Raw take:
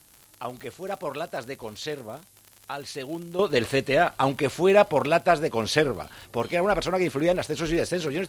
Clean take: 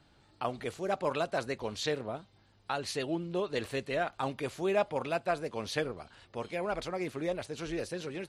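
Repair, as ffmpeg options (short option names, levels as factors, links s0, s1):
-af "adeclick=t=4,agate=range=0.0891:threshold=0.00562,asetnsamples=n=441:p=0,asendcmd='3.39 volume volume -11dB',volume=1"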